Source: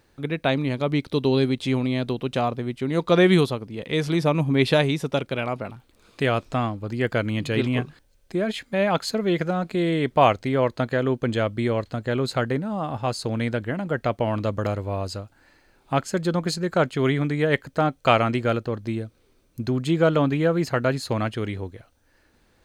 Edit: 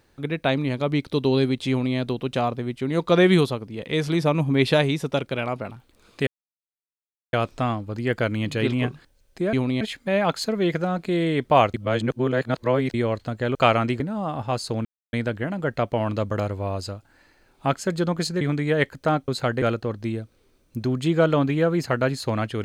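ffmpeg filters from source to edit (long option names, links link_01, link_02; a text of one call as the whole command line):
ffmpeg -i in.wav -filter_complex "[0:a]asplit=12[link_01][link_02][link_03][link_04][link_05][link_06][link_07][link_08][link_09][link_10][link_11][link_12];[link_01]atrim=end=6.27,asetpts=PTS-STARTPTS,afade=type=out:start_time=6.266:duration=0.004:curve=hsin,apad=pad_dur=1.06[link_13];[link_02]atrim=start=6.27:end=8.472,asetpts=PTS-STARTPTS,afade=type=in:duration=0.004:curve=hsin[link_14];[link_03]atrim=start=1.688:end=1.972[link_15];[link_04]atrim=start=8.468:end=10.402[link_16];[link_05]atrim=start=10.398:end=11.602,asetpts=PTS-STARTPTS,areverse[link_17];[link_06]atrim=start=11.598:end=12.212[link_18];[link_07]atrim=start=17.998:end=18.452[link_19];[link_08]atrim=start=12.548:end=13.4,asetpts=PTS-STARTPTS,afade=type=out:start_time=0.848:duration=0.004:curve=hsin,apad=pad_dur=0.28[link_20];[link_09]atrim=start=13.4:end=16.682,asetpts=PTS-STARTPTS,afade=type=in:duration=0.004:curve=hsin[link_21];[link_10]atrim=start=17.128:end=18.002[link_22];[link_11]atrim=start=12.208:end=12.552[link_23];[link_12]atrim=start=18.448[link_24];[link_13][link_14]concat=n=2:v=0:a=1[link_25];[link_25][link_15]acrossfade=duration=0.004:curve1=hsin:curve2=hsin[link_26];[link_26][link_16]acrossfade=duration=0.004:curve1=hsin:curve2=hsin[link_27];[link_27][link_17]acrossfade=duration=0.004:curve1=hsin:curve2=hsin[link_28];[link_28][link_18]acrossfade=duration=0.004:curve1=hsin:curve2=hsin[link_29];[link_29][link_19]acrossfade=duration=0.004:curve1=hsin:curve2=hsin[link_30];[link_20][link_21]concat=n=2:v=0:a=1[link_31];[link_30][link_31]acrossfade=duration=0.004:curve1=hsin:curve2=hsin[link_32];[link_32][link_22]acrossfade=duration=0.004:curve1=hsin:curve2=hsin[link_33];[link_33][link_23]acrossfade=duration=0.004:curve1=hsin:curve2=hsin[link_34];[link_34][link_24]acrossfade=duration=0.004:curve1=hsin:curve2=hsin" out.wav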